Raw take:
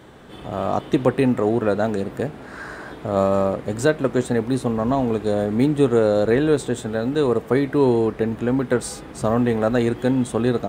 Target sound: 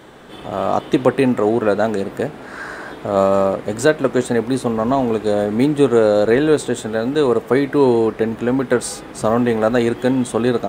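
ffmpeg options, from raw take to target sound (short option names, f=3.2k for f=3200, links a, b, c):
-af "equalizer=f=73:t=o:w=2.7:g=-8,volume=5dB"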